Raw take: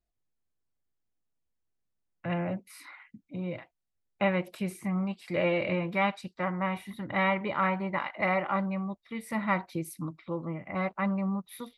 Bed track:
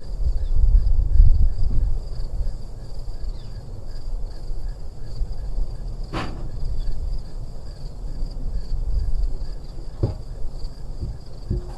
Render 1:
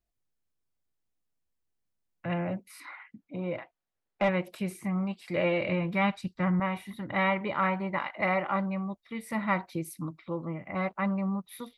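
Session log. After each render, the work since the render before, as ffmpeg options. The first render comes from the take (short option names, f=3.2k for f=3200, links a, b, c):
-filter_complex "[0:a]asettb=1/sr,asplit=3[a][b][c];[a]atrim=end=2.804[d];[b]atrim=start=2.8:end=4.29,asetpts=PTS-STARTPTS,afade=t=in:d=0.004:c=qsin,afade=t=out:st=1.486:d=0.004:c=qsin,asplit=2[e][f];[f]highpass=f=720:p=1,volume=15dB,asoftclip=type=tanh:threshold=-14.5dB[g];[e][g]amix=inputs=2:normalize=0,lowpass=f=1.1k:p=1,volume=-6dB[h];[c]atrim=start=4.286[i];[d][h]acrossfade=d=0.004:c1=hsin:c2=qsin[j];[j][i]acrossfade=d=0.004:c1=qsin:c2=hsin,asettb=1/sr,asplit=3[k][l][m];[k]atrim=end=5.604[n];[l]atrim=start=5.6:end=6.6,asetpts=PTS-STARTPTS,afade=t=in:d=0.004:c=qsin,afade=t=out:st=0.996:d=0.004:c=qsin,asubboost=boost=11:cutoff=250[o];[m]atrim=start=6.596[p];[n][o]acrossfade=d=0.004:c1=hsin:c2=qsin[q];[q][p]acrossfade=d=0.004:c1=qsin:c2=hsin"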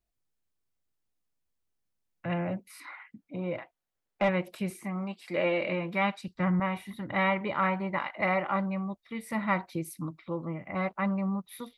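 -filter_complex "[0:a]asettb=1/sr,asplit=3[a][b][c];[a]atrim=end=4.704[d];[b]atrim=start=4.7:end=6.28,asetpts=PTS-STARTPTS,afade=t=in:d=0.004:c=qsin,afade=t=out:st=1.576:d=0.004:c=qsin,highpass=220[e];[c]atrim=start=6.276[f];[d][e]acrossfade=d=0.004:c1=hsin:c2=qsin[g];[g][f]acrossfade=d=0.004:c1=qsin:c2=hsin"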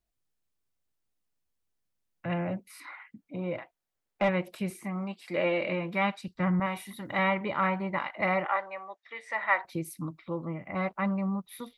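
-filter_complex "[0:a]asettb=1/sr,asplit=3[a][b][c];[a]atrim=end=6.664[d];[b]atrim=start=6.66:end=7.19,asetpts=PTS-STARTPTS,afade=t=in:d=0.004:c=qsin,afade=t=out:st=0.526:d=0.004:c=qsin,bass=f=250:g=-5,treble=f=4k:g=9[e];[c]atrim=start=7.186[f];[d][e]acrossfade=d=0.004:c1=hsin:c2=qsin[g];[g][f]acrossfade=d=0.004:c1=qsin:c2=hsin,asettb=1/sr,asplit=3[h][i][j];[h]atrim=end=8.464[k];[i]atrim=start=8.46:end=9.65,asetpts=PTS-STARTPTS,afade=t=in:d=0.004:c=qsin,afade=t=out:st=1.186:d=0.004:c=qsin,highpass=f=460:w=0.5412,highpass=f=460:w=1.3066,equalizer=f=830:t=q:w=4:g=3,equalizer=f=1.8k:t=q:w=4:g=9,equalizer=f=4.5k:t=q:w=4:g=-4,lowpass=f=6.8k:w=0.5412,lowpass=f=6.8k:w=1.3066[l];[j]atrim=start=9.646[m];[k][l]acrossfade=d=0.004:c1=hsin:c2=qsin[n];[n][m]acrossfade=d=0.004:c1=qsin:c2=hsin"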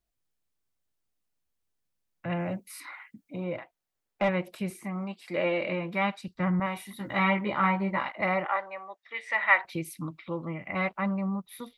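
-filter_complex "[0:a]asettb=1/sr,asplit=3[a][b][c];[a]atrim=end=2.404[d];[b]atrim=start=2.4:end=3.44,asetpts=PTS-STARTPTS,afade=t=in:d=0.004:c=qsin,afade=t=out:st=1.036:d=0.004:c=qsin,highshelf=f=4k:g=8[e];[c]atrim=start=3.436[f];[d][e]acrossfade=d=0.004:c1=hsin:c2=qsin[g];[g][f]acrossfade=d=0.004:c1=qsin:c2=hsin,asettb=1/sr,asplit=3[h][i][j];[h]atrim=end=6.984[k];[i]atrim=start=6.98:end=8.12,asetpts=PTS-STARTPTS,afade=t=in:d=0.004:c=qsin,afade=t=out:st=1.136:d=0.004:c=qsin,asplit=2[l][m];[m]adelay=15,volume=-2dB[n];[l][n]amix=inputs=2:normalize=0,atrim=end_sample=50274[o];[j]atrim=start=8.116[p];[k][o]acrossfade=d=0.004:c1=hsin:c2=qsin[q];[q][p]acrossfade=d=0.004:c1=qsin:c2=hsin,asettb=1/sr,asplit=3[r][s][t];[r]atrim=end=9.144[u];[s]atrim=start=9.14:end=10.99,asetpts=PTS-STARTPTS,afade=t=in:d=0.004:c=qsin,afade=t=out:st=1.846:d=0.004:c=qsin,equalizer=f=2.7k:w=1:g=8.5[v];[t]atrim=start=10.986[w];[u][v]acrossfade=d=0.004:c1=hsin:c2=qsin[x];[x][w]acrossfade=d=0.004:c1=qsin:c2=hsin"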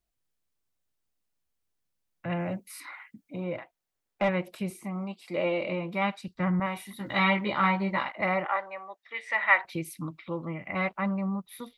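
-filter_complex "[0:a]asettb=1/sr,asplit=3[a][b][c];[a]atrim=end=4.634[d];[b]atrim=start=4.63:end=6.02,asetpts=PTS-STARTPTS,afade=t=in:d=0.004:c=qsin,afade=t=out:st=1.386:d=0.004:c=qsin,equalizer=f=1.7k:w=3.1:g=-10[e];[c]atrim=start=6.016[f];[d][e]acrossfade=d=0.004:c1=hsin:c2=qsin[g];[g][f]acrossfade=d=0.004:c1=qsin:c2=hsin,asettb=1/sr,asplit=3[h][i][j];[h]atrim=end=7.064[k];[i]atrim=start=7.06:end=8.04,asetpts=PTS-STARTPTS,afade=t=in:d=0.004:c=qsin,afade=t=out:st=0.976:d=0.004:c=qsin,equalizer=f=4.1k:w=1.5:g=9.5[l];[j]atrim=start=8.036[m];[k][l]acrossfade=d=0.004:c1=hsin:c2=qsin[n];[n][m]acrossfade=d=0.004:c1=qsin:c2=hsin"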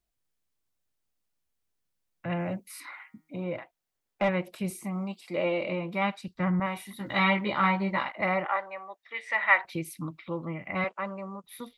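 -filter_complex "[0:a]asettb=1/sr,asplit=3[a][b][c];[a]atrim=end=2.764[d];[b]atrim=start=2.76:end=3.46,asetpts=PTS-STARTPTS,afade=t=in:d=0.004:c=qsin,afade=t=out:st=0.696:d=0.004:c=qsin,bandreject=f=157.1:t=h:w=4,bandreject=f=314.2:t=h:w=4,bandreject=f=471.3:t=h:w=4,bandreject=f=628.4:t=h:w=4,bandreject=f=785.5:t=h:w=4,bandreject=f=942.6:t=h:w=4,bandreject=f=1.0997k:t=h:w=4,bandreject=f=1.2568k:t=h:w=4,bandreject=f=1.4139k:t=h:w=4,bandreject=f=1.571k:t=h:w=4,bandreject=f=1.7281k:t=h:w=4,bandreject=f=1.8852k:t=h:w=4,bandreject=f=2.0423k:t=h:w=4,bandreject=f=2.1994k:t=h:w=4,bandreject=f=2.3565k:t=h:w=4[e];[c]atrim=start=3.456[f];[d][e]acrossfade=d=0.004:c1=hsin:c2=qsin[g];[g][f]acrossfade=d=0.004:c1=qsin:c2=hsin,asettb=1/sr,asplit=3[h][i][j];[h]atrim=end=4.644[k];[i]atrim=start=4.64:end=5.21,asetpts=PTS-STARTPTS,afade=t=in:d=0.004:c=qsin,afade=t=out:st=0.566:d=0.004:c=qsin,bass=f=250:g=2,treble=f=4k:g=6[l];[j]atrim=start=5.206[m];[k][l]acrossfade=d=0.004:c1=hsin:c2=qsin[n];[n][m]acrossfade=d=0.004:c1=qsin:c2=hsin,asettb=1/sr,asplit=3[o][p][q];[o]atrim=end=10.844[r];[p]atrim=start=10.84:end=11.44,asetpts=PTS-STARTPTS,afade=t=in:d=0.004:c=qsin,afade=t=out:st=0.596:d=0.004:c=qsin,highpass=370,equalizer=f=480:t=q:w=4:g=5,equalizer=f=770:t=q:w=4:g=-4,equalizer=f=2.1k:t=q:w=4:g=-4,equalizer=f=4k:t=q:w=4:g=-4,equalizer=f=7.1k:t=q:w=4:g=4,lowpass=f=8.9k:w=0.5412,lowpass=f=8.9k:w=1.3066[s];[q]atrim=start=11.436[t];[r][s]acrossfade=d=0.004:c1=hsin:c2=qsin[u];[u][t]acrossfade=d=0.004:c1=qsin:c2=hsin"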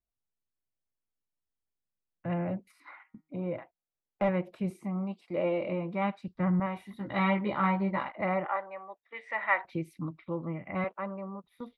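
-af "lowpass=f=1k:p=1,agate=range=-8dB:threshold=-51dB:ratio=16:detection=peak"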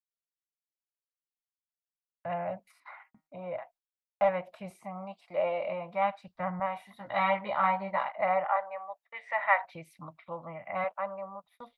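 -af "agate=range=-30dB:threshold=-60dB:ratio=16:detection=peak,lowshelf=f=490:t=q:w=3:g=-10"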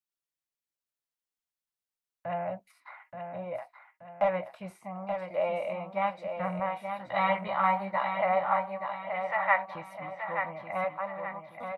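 -filter_complex "[0:a]asplit=2[a][b];[b]adelay=16,volume=-13.5dB[c];[a][c]amix=inputs=2:normalize=0,aecho=1:1:877|1754|2631|3508|4385:0.447|0.183|0.0751|0.0308|0.0126"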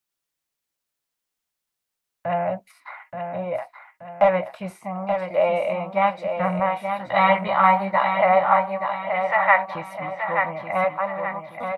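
-af "volume=9.5dB,alimiter=limit=-2dB:level=0:latency=1"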